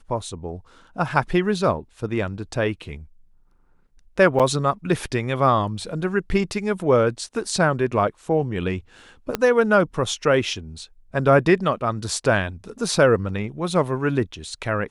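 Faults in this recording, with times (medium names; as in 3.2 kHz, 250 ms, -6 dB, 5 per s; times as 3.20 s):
4.39–4.40 s: dropout 7 ms
9.35 s: pop -8 dBFS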